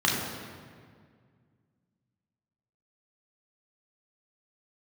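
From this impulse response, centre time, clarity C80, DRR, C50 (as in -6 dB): 81 ms, 3.5 dB, -3.5 dB, 1.5 dB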